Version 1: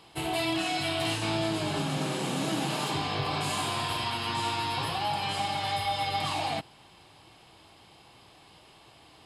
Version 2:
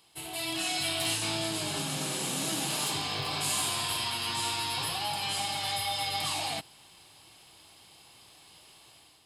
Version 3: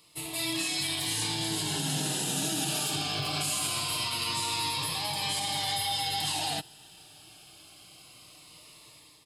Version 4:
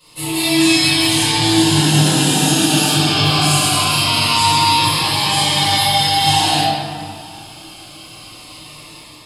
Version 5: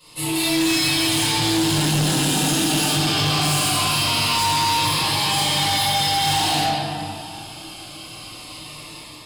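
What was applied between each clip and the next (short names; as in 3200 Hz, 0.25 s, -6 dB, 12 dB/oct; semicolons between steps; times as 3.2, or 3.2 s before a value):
pre-emphasis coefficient 0.8; AGC gain up to 8 dB
comb 6.6 ms, depth 33%; limiter -23.5 dBFS, peak gain reduction 6.5 dB; cascading phaser falling 0.23 Hz; gain +3.5 dB
reverb RT60 2.2 s, pre-delay 4 ms, DRR -12.5 dB; gain -2 dB
soft clip -16.5 dBFS, distortion -9 dB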